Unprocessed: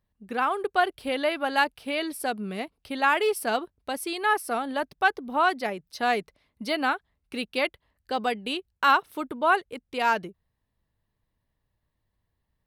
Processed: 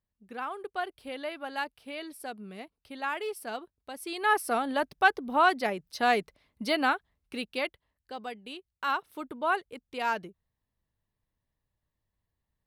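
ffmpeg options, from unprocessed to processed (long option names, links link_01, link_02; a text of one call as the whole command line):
ffmpeg -i in.wav -af "volume=6dB,afade=type=in:start_time=3.95:duration=0.44:silence=0.298538,afade=type=out:start_time=6.74:duration=1.41:silence=0.251189,afade=type=in:start_time=8.69:duration=0.63:silence=0.501187" out.wav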